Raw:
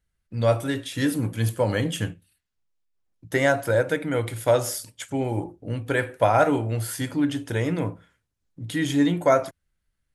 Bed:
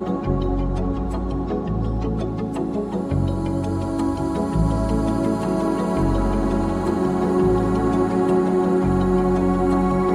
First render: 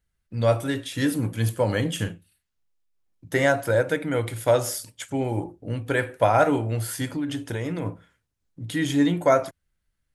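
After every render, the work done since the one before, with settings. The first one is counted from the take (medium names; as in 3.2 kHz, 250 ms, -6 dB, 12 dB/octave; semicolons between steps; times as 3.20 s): 1.95–3.44 s: doubling 40 ms -9 dB; 7.09–7.86 s: compression, threshold -24 dBFS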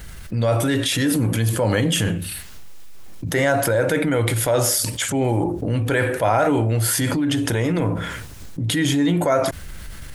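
transient shaper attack -5 dB, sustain +3 dB; level flattener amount 70%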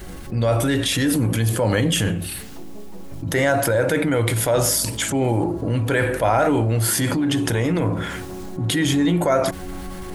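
add bed -16.5 dB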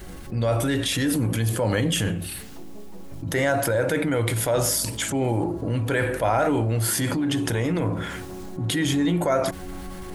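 trim -3.5 dB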